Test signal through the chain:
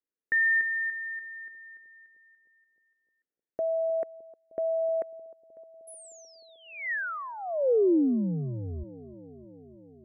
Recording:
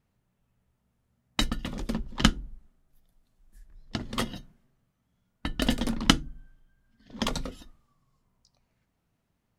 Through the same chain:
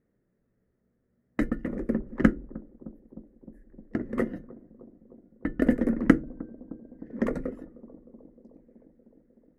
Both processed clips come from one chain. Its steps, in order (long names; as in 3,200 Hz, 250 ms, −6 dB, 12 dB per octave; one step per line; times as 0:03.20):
drawn EQ curve 110 Hz 0 dB, 330 Hz +14 dB, 500 Hz +13 dB, 880 Hz −5 dB, 1,900 Hz +6 dB, 3,400 Hz −26 dB, 10,000 Hz −12 dB
on a send: bucket-brigade delay 307 ms, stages 2,048, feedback 75%, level −20 dB
on the sum: level −5 dB